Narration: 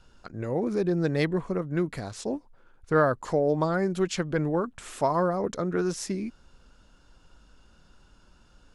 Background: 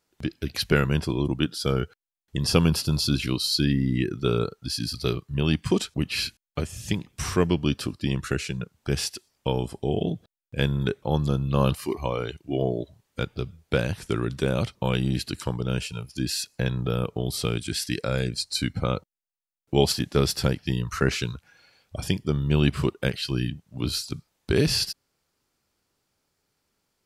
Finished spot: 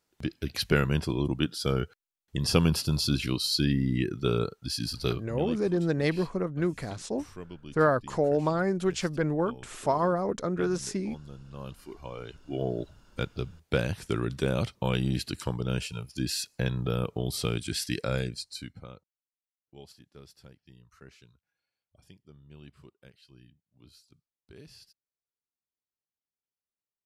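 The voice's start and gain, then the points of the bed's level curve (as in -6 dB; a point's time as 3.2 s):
4.85 s, -1.0 dB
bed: 5.17 s -3 dB
5.67 s -21 dB
11.52 s -21 dB
12.82 s -3 dB
18.15 s -3 dB
19.26 s -29 dB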